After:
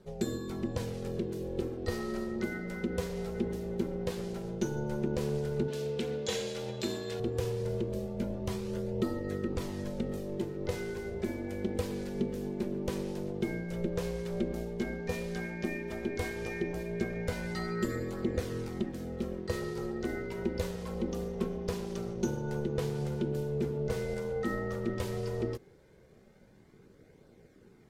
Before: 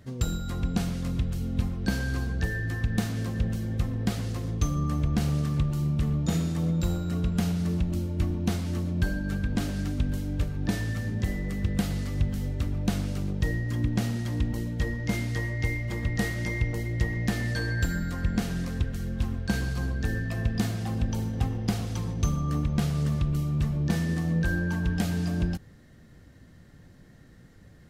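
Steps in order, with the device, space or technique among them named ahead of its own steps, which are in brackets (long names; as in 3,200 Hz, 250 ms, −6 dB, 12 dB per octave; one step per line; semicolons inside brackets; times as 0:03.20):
alien voice (ring modulation 290 Hz; flanger 0.11 Hz, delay 0.2 ms, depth 6 ms, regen −51%)
0:05.68–0:07.20: meter weighting curve D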